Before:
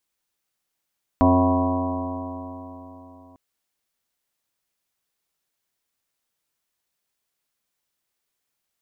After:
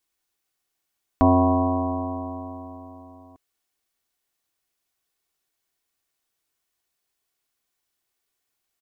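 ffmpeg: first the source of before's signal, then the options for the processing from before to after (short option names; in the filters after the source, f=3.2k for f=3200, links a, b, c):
-f lavfi -i "aevalsrc='0.1*pow(10,-3*t/3.69)*sin(2*PI*88.11*t)+0.0178*pow(10,-3*t/3.69)*sin(2*PI*176.84*t)+0.178*pow(10,-3*t/3.69)*sin(2*PI*266.84*t)+0.0282*pow(10,-3*t/3.69)*sin(2*PI*358.69*t)+0.0282*pow(10,-3*t/3.69)*sin(2*PI*453.01*t)+0.0447*pow(10,-3*t/3.69)*sin(2*PI*550.34*t)+0.0944*pow(10,-3*t/3.69)*sin(2*PI*651.21*t)+0.0631*pow(10,-3*t/3.69)*sin(2*PI*756.14*t)+0.0141*pow(10,-3*t/3.69)*sin(2*PI*865.57*t)+0.0891*pow(10,-3*t/3.69)*sin(2*PI*979.93*t)+0.0355*pow(10,-3*t/3.69)*sin(2*PI*1099.61*t)':d=2.15:s=44100"
-af "aecho=1:1:2.7:0.33"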